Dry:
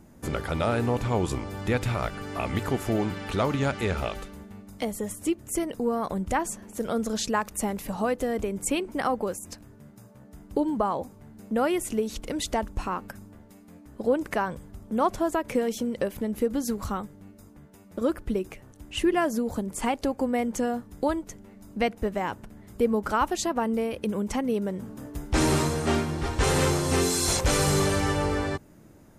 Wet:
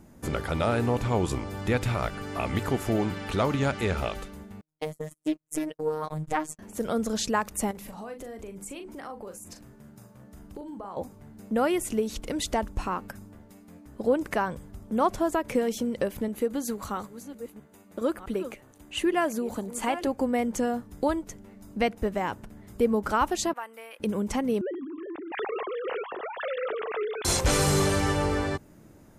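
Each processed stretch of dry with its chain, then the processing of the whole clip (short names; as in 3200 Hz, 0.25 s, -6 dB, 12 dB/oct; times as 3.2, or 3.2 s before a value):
4.61–6.59 gate -34 dBFS, range -39 dB + robotiser 154 Hz + Doppler distortion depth 0.23 ms
7.71–10.97 notches 50/100/150/200/250/300 Hz + compressor 3:1, threshold -41 dBFS + doubler 40 ms -8 dB
16.28–20.07 reverse delay 0.66 s, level -12 dB + low shelf 160 Hz -11.5 dB + notch 5300 Hz, Q 7.5
23.53–24 HPF 1300 Hz + bell 5400 Hz -11.5 dB 1.5 oct
24.61–27.25 sine-wave speech + compressor 2:1, threshold -35 dBFS
whole clip: dry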